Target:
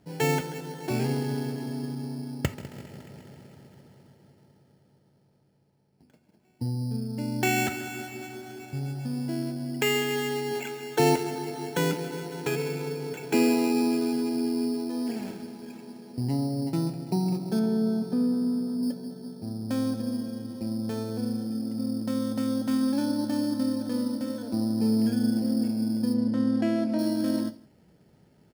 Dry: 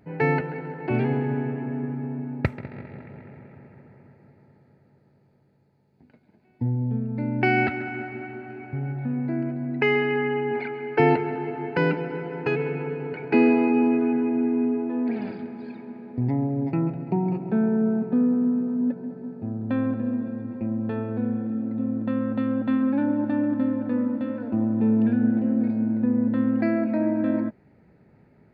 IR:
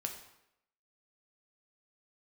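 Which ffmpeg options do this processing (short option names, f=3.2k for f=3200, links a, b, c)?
-filter_complex "[0:a]acrusher=samples=9:mix=1:aa=0.000001,asettb=1/sr,asplit=3[a][b][c];[a]atrim=end=26.144[d];[b]atrim=start=26.14:end=26.99,asetpts=PTS-STARTPTS,afade=t=in:d=0.004:c=qsin,afade=t=out:st=0.846:d=0.004:c=qsin,aemphasis=mode=reproduction:type=75fm[e];[c]atrim=start=26.986[f];[d][e]acrossfade=d=0.004:c1=hsin:c2=qsin[g];[g][f]acrossfade=d=0.004:c1=qsin:c2=hsin,aecho=1:1:163:0.0631,asplit=2[h][i];[1:a]atrim=start_sample=2205,atrim=end_sample=3969[j];[i][j]afir=irnorm=-1:irlink=0,volume=-2dB[k];[h][k]amix=inputs=2:normalize=0,asettb=1/sr,asplit=3[l][m][n];[l]atrim=end=17.594[o];[m]atrim=start=17.59:end=18.83,asetpts=PTS-STARTPTS,afade=t=in:d=0.004:c=qsin,afade=t=out:st=1.236:d=0.004:c=qsin,acrossover=split=3000[p][q];[q]acompressor=threshold=-40dB:ratio=4:attack=1:release=60[r];[p][r]amix=inputs=2:normalize=0[s];[n]atrim=start=18.826[t];[o][s]acrossfade=d=0.004:c1=hsin:c2=qsin[u];[u][t]acrossfade=d=0.004:c1=qsin:c2=hsin,volume=-8dB"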